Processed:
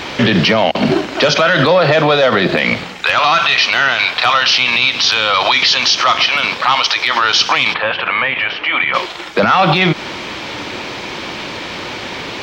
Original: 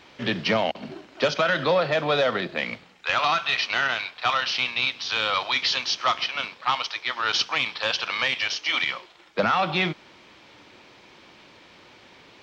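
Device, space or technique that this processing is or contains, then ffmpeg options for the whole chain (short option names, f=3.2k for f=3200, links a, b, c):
loud club master: -filter_complex "[0:a]acompressor=threshold=-27dB:ratio=2.5,asoftclip=type=hard:threshold=-16.5dB,alimiter=level_in=27.5dB:limit=-1dB:release=50:level=0:latency=1,asplit=3[a][b][c];[a]afade=t=out:st=7.73:d=0.02[d];[b]lowpass=f=2.5k:w=0.5412,lowpass=f=2.5k:w=1.3066,afade=t=in:st=7.73:d=0.02,afade=t=out:st=8.93:d=0.02[e];[c]afade=t=in:st=8.93:d=0.02[f];[d][e][f]amix=inputs=3:normalize=0,volume=-2dB"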